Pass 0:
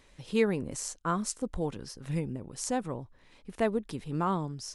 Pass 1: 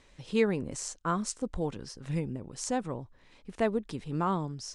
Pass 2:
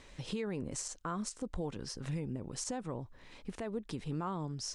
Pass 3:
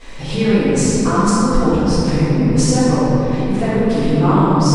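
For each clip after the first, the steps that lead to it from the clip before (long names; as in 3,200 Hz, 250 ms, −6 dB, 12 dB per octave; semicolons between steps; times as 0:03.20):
low-pass filter 9,000 Hz 24 dB per octave
downward compressor 2 to 1, threshold −43 dBFS, peak gain reduction 12.5 dB; brickwall limiter −33 dBFS, peak gain reduction 9.5 dB; level +4.5 dB
in parallel at −2.5 dB: output level in coarse steps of 20 dB; on the sum: convolution reverb RT60 3.5 s, pre-delay 4 ms, DRR −17.5 dB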